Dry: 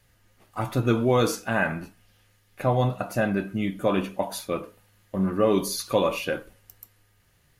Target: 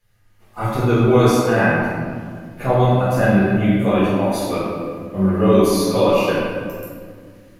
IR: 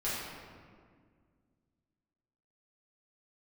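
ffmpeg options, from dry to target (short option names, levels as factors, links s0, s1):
-filter_complex "[0:a]dynaudnorm=f=290:g=3:m=3.55[s0];[1:a]atrim=start_sample=2205,asetrate=43659,aresample=44100[s1];[s0][s1]afir=irnorm=-1:irlink=0,volume=0.473"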